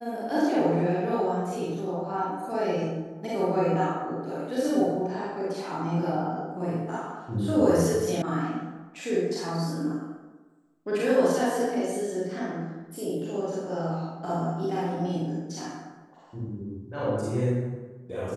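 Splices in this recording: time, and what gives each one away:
8.22 sound cut off

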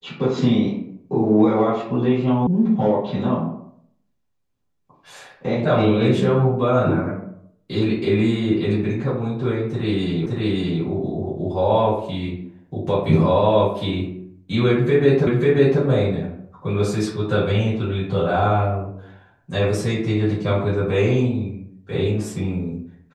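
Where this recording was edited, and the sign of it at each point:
2.47 sound cut off
10.26 repeat of the last 0.57 s
15.27 repeat of the last 0.54 s

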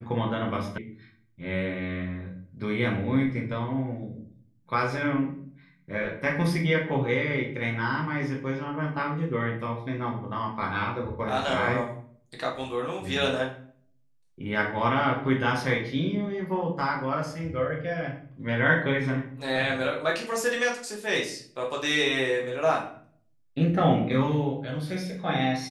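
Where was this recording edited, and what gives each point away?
0.78 sound cut off

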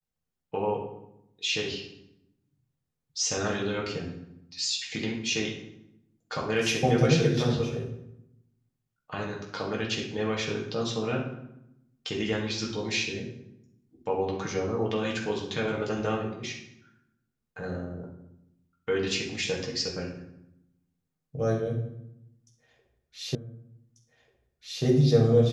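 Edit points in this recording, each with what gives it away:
23.35 repeat of the last 1.49 s

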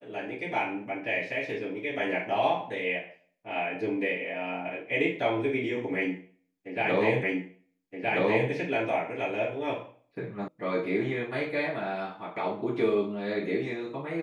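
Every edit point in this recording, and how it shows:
7.23 repeat of the last 1.27 s
10.48 sound cut off

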